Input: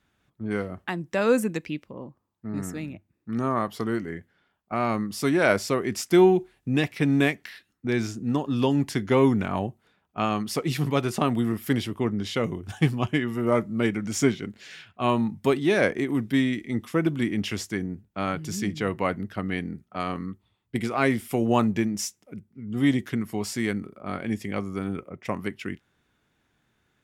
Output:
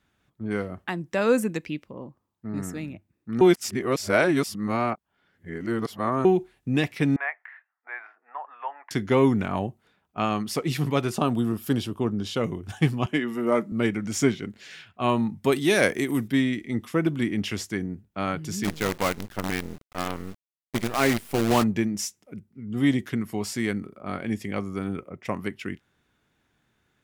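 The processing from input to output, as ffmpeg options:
-filter_complex "[0:a]asettb=1/sr,asplit=3[s0][s1][s2];[s0]atrim=end=7.164[s3];[s1]atrim=start=7.16:end=8.91,asetpts=PTS-STARTPTS,afade=t=in:d=0.004:c=qsin,afade=t=out:st=1.746:d=0.004:c=qsin,asuperpass=centerf=1200:order=8:qfactor=0.88[s4];[s2]atrim=start=8.906[s5];[s3][s4]acrossfade=d=0.004:c1=hsin:c2=qsin[s6];[s6][s5]acrossfade=d=0.004:c1=qsin:c2=hsin,asettb=1/sr,asplit=3[s7][s8][s9];[s7]atrim=end=11.144[s10];[s8]atrim=start=11.14:end=12.41,asetpts=PTS-STARTPTS,afade=t=in:d=0.004:c=qsin,afade=t=out:st=1.266:d=0.004:c=qsin,equalizer=f=2000:t=o:w=0.28:g=-14.5[s11];[s9]atrim=start=12.406[s12];[s10][s11]acrossfade=d=0.004:c1=hsin:c2=qsin[s13];[s13][s12]acrossfade=d=0.004:c1=qsin:c2=hsin,asettb=1/sr,asplit=3[s14][s15][s16];[s14]atrim=end=13.064[s17];[s15]atrim=start=13.06:end=13.72,asetpts=PTS-STARTPTS,afade=t=in:d=0.004:c=qsin,afade=t=out:st=0.656:d=0.004:c=qsin,highpass=f=170:w=0.5412,highpass=f=170:w=1.3066[s18];[s16]atrim=start=13.716[s19];[s17][s18]acrossfade=d=0.004:c1=hsin:c2=qsin[s20];[s20][s19]acrossfade=d=0.004:c1=qsin:c2=hsin,asettb=1/sr,asplit=3[s21][s22][s23];[s21]atrim=end=15.524[s24];[s22]atrim=start=15.52:end=16.28,asetpts=PTS-STARTPTS,afade=t=in:d=0.004:c=qsin,afade=t=out:st=0.756:d=0.004:c=qsin,aemphasis=mode=production:type=75kf[s25];[s23]atrim=start=16.276[s26];[s24][s25]acrossfade=d=0.004:c1=hsin:c2=qsin[s27];[s27][s26]acrossfade=d=0.004:c1=qsin:c2=hsin,asplit=3[s28][s29][s30];[s28]afade=t=out:st=18.63:d=0.02[s31];[s29]acrusher=bits=5:dc=4:mix=0:aa=0.000001,afade=t=in:st=18.63:d=0.02,afade=t=out:st=21.62:d=0.02[s32];[s30]afade=t=in:st=21.62:d=0.02[s33];[s31][s32][s33]amix=inputs=3:normalize=0,asplit=3[s34][s35][s36];[s34]atrim=end=3.412[s37];[s35]atrim=start=3.408:end=6.252,asetpts=PTS-STARTPTS,areverse[s38];[s36]atrim=start=6.248[s39];[s37][s38]acrossfade=d=0.004:c1=hsin:c2=hsin[s40];[s40][s39]acrossfade=d=0.004:c1=hsin:c2=hsin"

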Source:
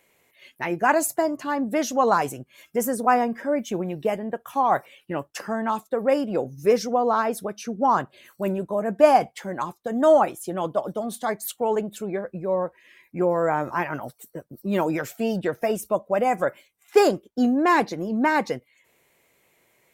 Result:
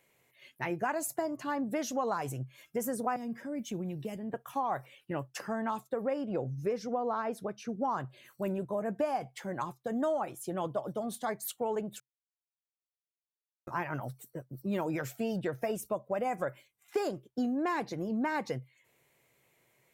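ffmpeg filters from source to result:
-filter_complex "[0:a]asettb=1/sr,asplit=3[s0][s1][s2];[s0]atrim=end=3.164[s3];[s1]atrim=start=3.16:end=4.34,asetpts=PTS-STARTPTS,afade=t=in:d=0.004:c=qsin,afade=t=out:st=1.176:d=0.004:c=qsin,acrossover=split=320|3000[s4][s5][s6];[s5]acompressor=threshold=0.00708:ratio=3:attack=3.2:release=140:knee=2.83:detection=peak[s7];[s4][s7][s6]amix=inputs=3:normalize=0[s8];[s2]atrim=start=4.336[s9];[s3][s8]acrossfade=d=0.004:c1=hsin:c2=qsin[s10];[s10][s9]acrossfade=d=0.004:c1=qsin:c2=hsin,asettb=1/sr,asplit=3[s11][s12][s13];[s11]atrim=end=6.074[s14];[s12]atrim=start=6.07:end=7.69,asetpts=PTS-STARTPTS,afade=t=in:d=0.004:c=qsin,afade=t=out:st=1.616:d=0.004:c=qsin,lowpass=f=3400:p=1[s15];[s13]atrim=start=7.686[s16];[s14][s15]acrossfade=d=0.004:c1=hsin:c2=qsin[s17];[s17][s16]acrossfade=d=0.004:c1=qsin:c2=hsin,asplit=3[s18][s19][s20];[s18]atrim=end=12,asetpts=PTS-STARTPTS,afade=t=out:st=11.996:d=0.004:c=hsin[s21];[s19]atrim=start=12:end=13.67,asetpts=PTS-STARTPTS,volume=0[s22];[s20]atrim=start=13.67,asetpts=PTS-STARTPTS,afade=t=in:d=0.004:c=hsin[s23];[s21][s22][s23]concat=n=3:v=0:a=1,equalizer=f=130:t=o:w=0.28:g=12,acompressor=threshold=0.0794:ratio=6,volume=0.473"

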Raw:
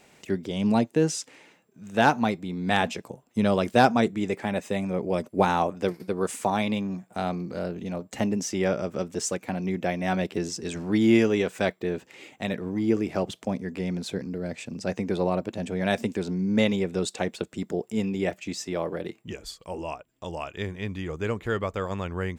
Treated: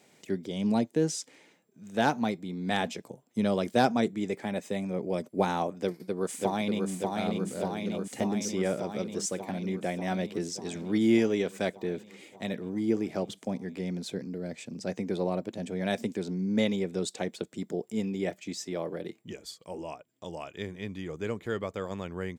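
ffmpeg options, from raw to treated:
-filter_complex "[0:a]asplit=2[s0][s1];[s1]afade=t=in:st=5.79:d=0.01,afade=t=out:st=6.89:d=0.01,aecho=0:1:590|1180|1770|2360|2950|3540|4130|4720|5310|5900|6490|7080:0.707946|0.530959|0.39822|0.298665|0.223998|0.167999|0.125999|0.0944994|0.0708745|0.0531559|0.0398669|0.0299002[s2];[s0][s2]amix=inputs=2:normalize=0,highpass=130,equalizer=f=1200:w=0.88:g=-5,bandreject=f=2700:w=12,volume=0.708"

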